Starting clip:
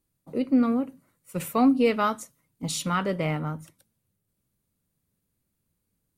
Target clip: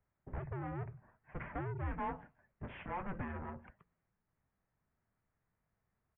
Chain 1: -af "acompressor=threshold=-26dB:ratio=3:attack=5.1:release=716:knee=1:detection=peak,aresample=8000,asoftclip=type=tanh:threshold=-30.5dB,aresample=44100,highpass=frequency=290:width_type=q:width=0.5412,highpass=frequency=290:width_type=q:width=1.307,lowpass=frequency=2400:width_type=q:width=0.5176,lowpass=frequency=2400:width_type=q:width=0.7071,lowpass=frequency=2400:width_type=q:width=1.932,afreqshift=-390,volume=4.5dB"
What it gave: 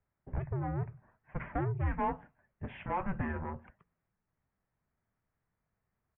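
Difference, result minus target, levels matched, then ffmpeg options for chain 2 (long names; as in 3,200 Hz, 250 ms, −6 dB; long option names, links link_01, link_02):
soft clipping: distortion −5 dB
-af "acompressor=threshold=-26dB:ratio=3:attack=5.1:release=716:knee=1:detection=peak,aresample=8000,asoftclip=type=tanh:threshold=-39.5dB,aresample=44100,highpass=frequency=290:width_type=q:width=0.5412,highpass=frequency=290:width_type=q:width=1.307,lowpass=frequency=2400:width_type=q:width=0.5176,lowpass=frequency=2400:width_type=q:width=0.7071,lowpass=frequency=2400:width_type=q:width=1.932,afreqshift=-390,volume=4.5dB"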